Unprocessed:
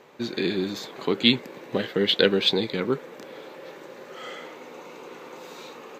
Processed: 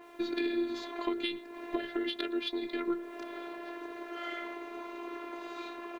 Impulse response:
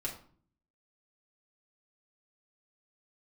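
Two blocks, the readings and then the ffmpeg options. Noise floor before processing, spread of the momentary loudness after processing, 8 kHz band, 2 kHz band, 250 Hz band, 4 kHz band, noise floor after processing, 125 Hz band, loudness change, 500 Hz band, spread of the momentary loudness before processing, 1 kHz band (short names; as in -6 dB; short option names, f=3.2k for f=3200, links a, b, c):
-45 dBFS, 9 LU, under -10 dB, -9.5 dB, -6.5 dB, -15.5 dB, -48 dBFS, under -25 dB, -12.5 dB, -10.5 dB, 22 LU, -3.0 dB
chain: -filter_complex "[0:a]highpass=f=170:p=1,highshelf=f=7.9k:g=5.5,bandreject=f=50:t=h:w=6,bandreject=f=100:t=h:w=6,bandreject=f=150:t=h:w=6,bandreject=f=200:t=h:w=6,bandreject=f=250:t=h:w=6,bandreject=f=300:t=h:w=6,bandreject=f=350:t=h:w=6,bandreject=f=400:t=h:w=6,bandreject=f=450:t=h:w=6,acompressor=threshold=-33dB:ratio=4,afftfilt=real='hypot(re,im)*cos(PI*b)':imag='0':win_size=512:overlap=0.75,adynamicsmooth=sensitivity=1:basefreq=3k,acrusher=bits=11:mix=0:aa=0.000001,asplit=2[a][b];[b]adelay=116.6,volume=-22dB,highshelf=f=4k:g=-2.62[c];[a][c]amix=inputs=2:normalize=0,adynamicequalizer=threshold=0.00158:dfrequency=3700:dqfactor=0.7:tfrequency=3700:tqfactor=0.7:attack=5:release=100:ratio=0.375:range=1.5:mode=cutabove:tftype=highshelf,volume=6dB"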